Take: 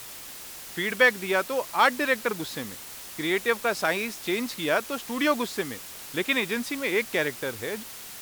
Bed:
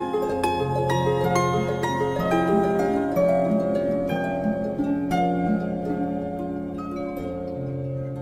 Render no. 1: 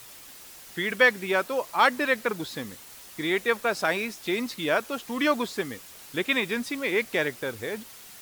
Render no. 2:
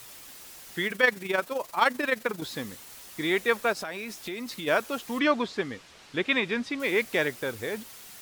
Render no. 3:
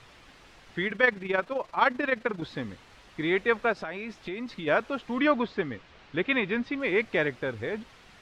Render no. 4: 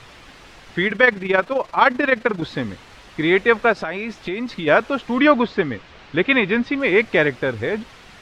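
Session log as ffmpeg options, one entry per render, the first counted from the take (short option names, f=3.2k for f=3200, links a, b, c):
-af "afftdn=nr=6:nf=-42"
-filter_complex "[0:a]asettb=1/sr,asplit=3[a][b][c];[a]atrim=end=0.874[d];[b]atrim=start=0.87:end=2.42,asetpts=PTS-STARTPTS,afade=t=in:d=0.004:c=qsin,afade=t=out:st=1.546:d=0.004:c=qsin,tremolo=f=23:d=0.621[e];[c]atrim=start=2.416[f];[d][e]acrossfade=d=0.004:c1=hsin:c2=qsin[g];[g][f]acrossfade=d=0.004:c1=qsin:c2=hsin,asplit=3[h][i][j];[h]afade=t=out:st=3.72:d=0.02[k];[i]acompressor=threshold=-32dB:ratio=5:attack=3.2:release=140:knee=1:detection=peak,afade=t=in:st=3.72:d=0.02,afade=t=out:st=4.66:d=0.02[l];[j]afade=t=in:st=4.66:d=0.02[m];[k][l][m]amix=inputs=3:normalize=0,asettb=1/sr,asplit=3[n][o][p];[n]atrim=end=5.194[q];[o]atrim=start=5.19:end=6.8,asetpts=PTS-STARTPTS,afade=t=in:d=0.004:c=qsin,afade=t=out:st=1.606:d=0.004:c=qsin,lowpass=4.7k[r];[p]atrim=start=6.796[s];[q][r]acrossfade=d=0.004:c1=hsin:c2=qsin[t];[t][s]acrossfade=d=0.004:c1=qsin:c2=hsin"
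-af "lowpass=2.9k,lowshelf=f=89:g=11"
-af "volume=9.5dB,alimiter=limit=-2dB:level=0:latency=1"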